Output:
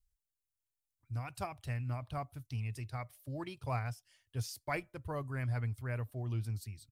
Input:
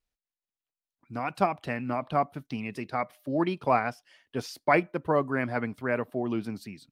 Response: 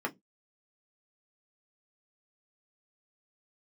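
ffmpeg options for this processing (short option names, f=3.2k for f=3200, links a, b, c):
-af "firequalizer=gain_entry='entry(110,0);entry(170,-26);entry(7700,-7)':delay=0.05:min_phase=1,volume=9dB"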